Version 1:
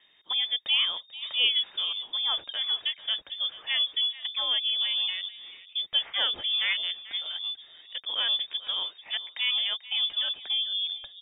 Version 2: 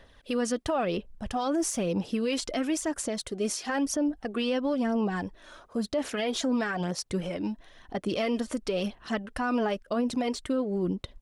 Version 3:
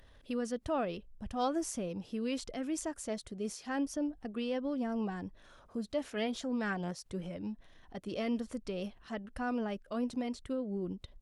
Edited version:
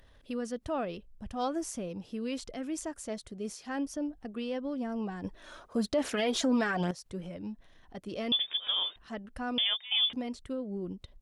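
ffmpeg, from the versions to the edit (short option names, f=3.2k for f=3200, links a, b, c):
-filter_complex "[0:a]asplit=2[a][b];[2:a]asplit=4[c][d][e][f];[c]atrim=end=5.242[g];[1:a]atrim=start=5.238:end=6.912[h];[d]atrim=start=6.908:end=8.322[i];[a]atrim=start=8.318:end=8.962[j];[e]atrim=start=8.958:end=9.582[k];[b]atrim=start=9.578:end=10.132[l];[f]atrim=start=10.128[m];[g][h]acrossfade=d=0.004:c1=hsin:c2=hsin[n];[n][i]acrossfade=d=0.004:c1=hsin:c2=hsin[o];[o][j]acrossfade=d=0.004:c1=hsin:c2=hsin[p];[p][k]acrossfade=d=0.004:c1=hsin:c2=hsin[q];[q][l]acrossfade=d=0.004:c1=hsin:c2=hsin[r];[r][m]acrossfade=d=0.004:c1=hsin:c2=hsin"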